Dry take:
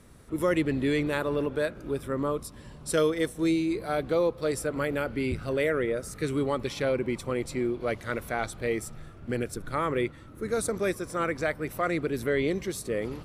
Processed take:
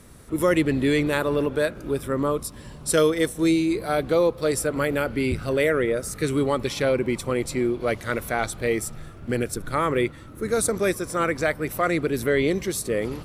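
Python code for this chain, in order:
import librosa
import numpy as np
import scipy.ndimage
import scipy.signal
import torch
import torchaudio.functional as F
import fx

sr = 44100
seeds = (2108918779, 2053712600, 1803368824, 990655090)

y = fx.high_shelf(x, sr, hz=6200.0, db=5.5)
y = y * 10.0 ** (5.0 / 20.0)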